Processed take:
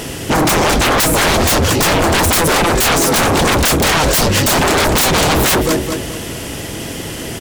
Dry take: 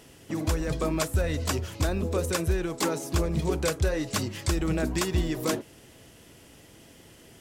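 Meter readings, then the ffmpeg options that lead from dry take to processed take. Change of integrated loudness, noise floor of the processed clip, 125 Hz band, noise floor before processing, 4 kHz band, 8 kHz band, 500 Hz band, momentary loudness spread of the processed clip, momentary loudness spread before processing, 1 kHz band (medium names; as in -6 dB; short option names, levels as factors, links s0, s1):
+16.0 dB, -26 dBFS, +11.0 dB, -53 dBFS, +21.0 dB, +19.5 dB, +14.5 dB, 13 LU, 3 LU, +22.0 dB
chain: -af "aecho=1:1:214|428|642|856:0.237|0.0854|0.0307|0.0111,aeval=exprs='0.188*sin(PI/2*7.94*val(0)/0.188)':c=same,volume=1.78"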